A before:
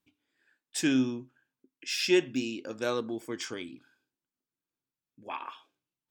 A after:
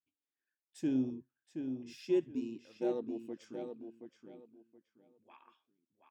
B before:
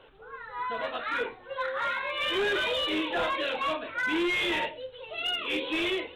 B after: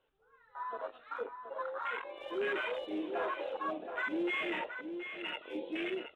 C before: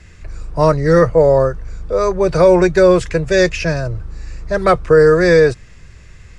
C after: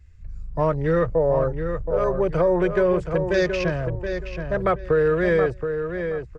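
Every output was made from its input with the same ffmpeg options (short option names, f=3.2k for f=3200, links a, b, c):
-filter_complex "[0:a]afwtdn=0.0447,acompressor=threshold=-13dB:ratio=2,asplit=2[a][b];[b]adelay=724,lowpass=f=3.5k:p=1,volume=-7dB,asplit=2[c][d];[d]adelay=724,lowpass=f=3.5k:p=1,volume=0.24,asplit=2[e][f];[f]adelay=724,lowpass=f=3.5k:p=1,volume=0.24[g];[c][e][g]amix=inputs=3:normalize=0[h];[a][h]amix=inputs=2:normalize=0,volume=-6dB"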